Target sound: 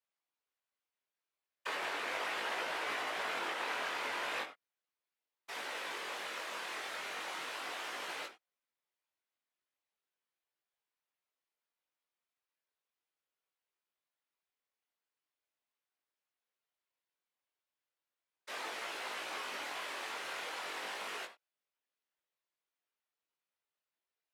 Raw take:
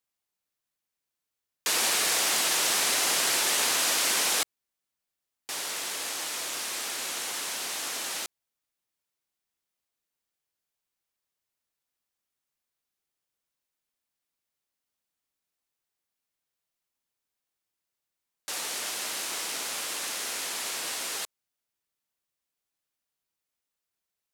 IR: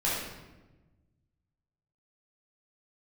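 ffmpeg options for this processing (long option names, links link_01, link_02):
-filter_complex "[0:a]acrossover=split=300 3900:gain=0.0891 1 0.224[link_01][link_02][link_03];[link_01][link_02][link_03]amix=inputs=3:normalize=0,acrossover=split=2700[link_04][link_05];[link_05]acompressor=threshold=-45dB:ratio=4:attack=1:release=60[link_06];[link_04][link_06]amix=inputs=2:normalize=0,asplit=2[link_07][link_08];[1:a]atrim=start_sample=2205,afade=type=out:start_time=0.29:duration=0.01,atrim=end_sample=13230,atrim=end_sample=4410[link_09];[link_08][link_09]afir=irnorm=-1:irlink=0,volume=-15dB[link_10];[link_07][link_10]amix=inputs=2:normalize=0,alimiter=limit=-24dB:level=0:latency=1:release=180,afftfilt=real='hypot(re,im)*cos(2*PI*random(0))':imag='hypot(re,im)*sin(2*PI*random(1))':win_size=512:overlap=0.75,flanger=delay=17.5:depth=5.5:speed=0.37,volume=5dB"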